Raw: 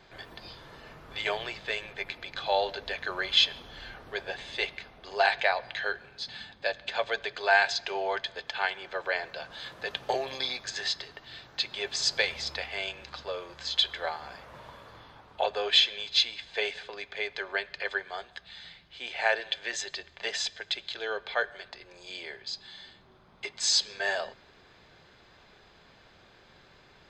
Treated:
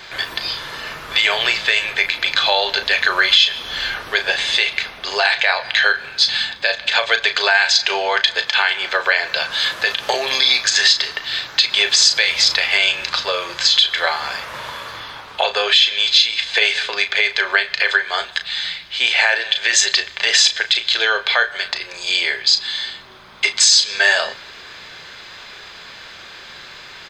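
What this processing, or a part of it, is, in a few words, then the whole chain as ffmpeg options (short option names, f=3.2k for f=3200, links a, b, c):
mastering chain: -filter_complex "[0:a]equalizer=f=750:t=o:w=0.47:g=-3.5,asplit=2[a][b];[b]adelay=35,volume=-10.5dB[c];[a][c]amix=inputs=2:normalize=0,acompressor=threshold=-33dB:ratio=2.5,tiltshelf=f=730:g=-8,alimiter=level_in=17dB:limit=-1dB:release=50:level=0:latency=1,volume=-1dB"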